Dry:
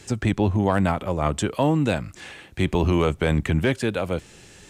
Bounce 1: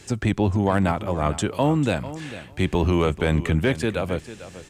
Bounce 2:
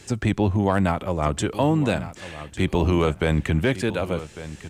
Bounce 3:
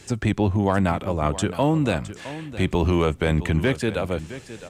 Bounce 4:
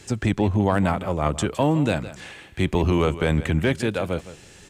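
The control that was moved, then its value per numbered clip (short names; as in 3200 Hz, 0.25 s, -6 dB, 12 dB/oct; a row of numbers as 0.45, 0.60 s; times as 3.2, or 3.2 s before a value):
feedback echo, time: 0.446, 1.151, 0.663, 0.162 s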